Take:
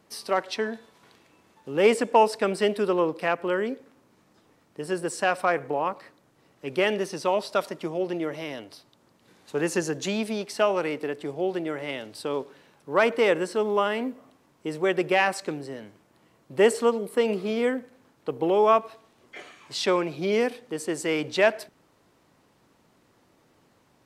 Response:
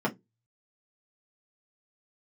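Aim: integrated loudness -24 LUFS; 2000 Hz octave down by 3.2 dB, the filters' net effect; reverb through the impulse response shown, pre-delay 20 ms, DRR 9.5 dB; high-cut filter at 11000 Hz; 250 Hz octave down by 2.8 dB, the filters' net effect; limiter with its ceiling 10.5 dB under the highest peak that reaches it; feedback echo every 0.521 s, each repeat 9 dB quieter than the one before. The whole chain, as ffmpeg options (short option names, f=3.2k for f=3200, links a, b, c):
-filter_complex "[0:a]lowpass=11k,equalizer=f=250:t=o:g=-4,equalizer=f=2k:t=o:g=-4,alimiter=limit=-19.5dB:level=0:latency=1,aecho=1:1:521|1042|1563|2084:0.355|0.124|0.0435|0.0152,asplit=2[a][b];[1:a]atrim=start_sample=2205,adelay=20[c];[b][c]afir=irnorm=-1:irlink=0,volume=-19.5dB[d];[a][d]amix=inputs=2:normalize=0,volume=6dB"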